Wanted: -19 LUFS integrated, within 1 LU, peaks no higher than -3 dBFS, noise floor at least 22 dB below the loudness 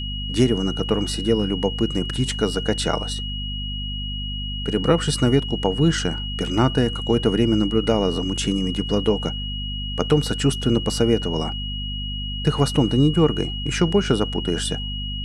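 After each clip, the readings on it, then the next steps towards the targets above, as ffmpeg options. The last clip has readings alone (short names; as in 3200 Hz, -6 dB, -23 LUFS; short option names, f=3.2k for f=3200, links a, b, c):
hum 50 Hz; harmonics up to 250 Hz; hum level -27 dBFS; steady tone 2900 Hz; tone level -30 dBFS; loudness -22.0 LUFS; peak -4.5 dBFS; loudness target -19.0 LUFS
-> -af "bandreject=f=50:t=h:w=4,bandreject=f=100:t=h:w=4,bandreject=f=150:t=h:w=4,bandreject=f=200:t=h:w=4,bandreject=f=250:t=h:w=4"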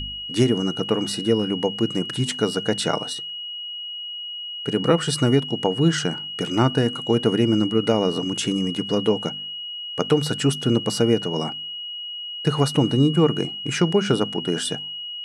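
hum none; steady tone 2900 Hz; tone level -30 dBFS
-> -af "bandreject=f=2.9k:w=30"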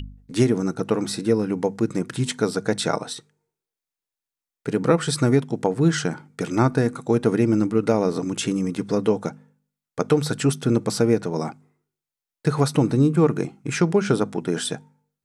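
steady tone none; loudness -22.5 LUFS; peak -5.0 dBFS; loudness target -19.0 LUFS
-> -af "volume=3.5dB,alimiter=limit=-3dB:level=0:latency=1"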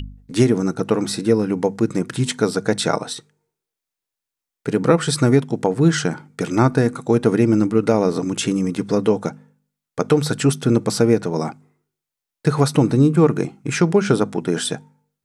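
loudness -19.0 LUFS; peak -3.0 dBFS; noise floor -86 dBFS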